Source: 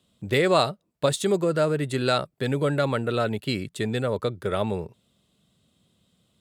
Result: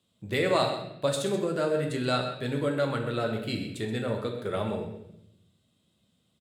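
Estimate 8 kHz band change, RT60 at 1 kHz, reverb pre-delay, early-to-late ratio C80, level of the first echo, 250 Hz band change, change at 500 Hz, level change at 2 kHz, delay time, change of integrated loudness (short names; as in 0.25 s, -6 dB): -5.0 dB, 0.70 s, 9 ms, 7.5 dB, -12.0 dB, -3.5 dB, -4.0 dB, -4.0 dB, 0.128 s, -4.0 dB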